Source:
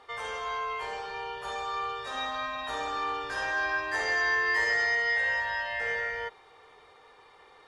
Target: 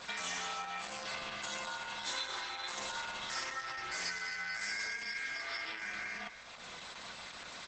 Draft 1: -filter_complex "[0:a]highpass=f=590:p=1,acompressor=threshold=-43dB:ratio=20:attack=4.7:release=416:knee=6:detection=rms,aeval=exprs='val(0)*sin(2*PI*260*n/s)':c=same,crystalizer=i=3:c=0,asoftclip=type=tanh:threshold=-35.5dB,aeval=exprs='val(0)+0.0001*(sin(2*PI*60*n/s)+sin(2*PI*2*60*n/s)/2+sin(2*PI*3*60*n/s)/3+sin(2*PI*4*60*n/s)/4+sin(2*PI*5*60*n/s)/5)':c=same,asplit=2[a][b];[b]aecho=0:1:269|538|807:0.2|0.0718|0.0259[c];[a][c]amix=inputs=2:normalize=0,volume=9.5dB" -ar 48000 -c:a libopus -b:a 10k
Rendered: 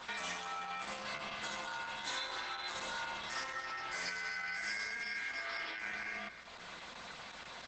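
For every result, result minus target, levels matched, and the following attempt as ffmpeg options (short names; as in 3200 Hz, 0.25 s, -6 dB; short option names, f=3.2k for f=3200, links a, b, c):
soft clip: distortion +11 dB; 8000 Hz band -4.0 dB
-filter_complex "[0:a]highpass=f=590:p=1,acompressor=threshold=-43dB:ratio=20:attack=4.7:release=416:knee=6:detection=rms,aeval=exprs='val(0)*sin(2*PI*260*n/s)':c=same,crystalizer=i=3:c=0,asoftclip=type=tanh:threshold=-28.5dB,aeval=exprs='val(0)+0.0001*(sin(2*PI*60*n/s)+sin(2*PI*2*60*n/s)/2+sin(2*PI*3*60*n/s)/3+sin(2*PI*4*60*n/s)/4+sin(2*PI*5*60*n/s)/5)':c=same,asplit=2[a][b];[b]aecho=0:1:269|538|807:0.2|0.0718|0.0259[c];[a][c]amix=inputs=2:normalize=0,volume=9.5dB" -ar 48000 -c:a libopus -b:a 10k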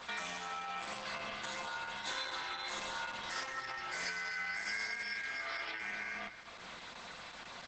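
8000 Hz band -4.5 dB
-filter_complex "[0:a]highpass=f=590:p=1,highshelf=f=5.5k:g=10,acompressor=threshold=-43dB:ratio=20:attack=4.7:release=416:knee=6:detection=rms,aeval=exprs='val(0)*sin(2*PI*260*n/s)':c=same,crystalizer=i=3:c=0,asoftclip=type=tanh:threshold=-28.5dB,aeval=exprs='val(0)+0.0001*(sin(2*PI*60*n/s)+sin(2*PI*2*60*n/s)/2+sin(2*PI*3*60*n/s)/3+sin(2*PI*4*60*n/s)/4+sin(2*PI*5*60*n/s)/5)':c=same,asplit=2[a][b];[b]aecho=0:1:269|538|807:0.2|0.0718|0.0259[c];[a][c]amix=inputs=2:normalize=0,volume=9.5dB" -ar 48000 -c:a libopus -b:a 10k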